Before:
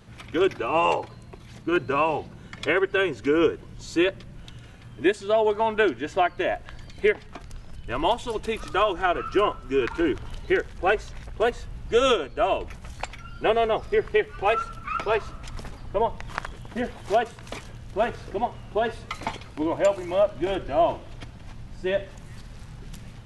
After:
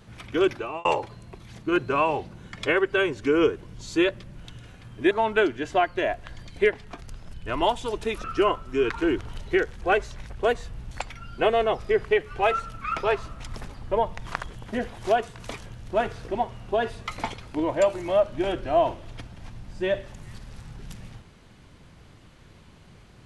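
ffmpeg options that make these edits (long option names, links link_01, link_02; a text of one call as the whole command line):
ffmpeg -i in.wav -filter_complex "[0:a]asplit=5[link_01][link_02][link_03][link_04][link_05];[link_01]atrim=end=0.85,asetpts=PTS-STARTPTS,afade=type=out:start_time=0.52:duration=0.33[link_06];[link_02]atrim=start=0.85:end=5.112,asetpts=PTS-STARTPTS,afade=type=in:duration=0.004:curve=hsin[link_07];[link_03]atrim=start=5.528:end=8.662[link_08];[link_04]atrim=start=9.208:end=11.882[link_09];[link_05]atrim=start=12.938[link_10];[link_06][link_07]concat=n=2:v=0:a=1[link_11];[link_11][link_08]acrossfade=duration=0.004:curve1=hsin:curve2=hsin[link_12];[link_12][link_09]acrossfade=duration=0.004:curve1=hsin:curve2=hsin[link_13];[link_13][link_10]acrossfade=duration=0.004:curve1=hsin:curve2=hsin" out.wav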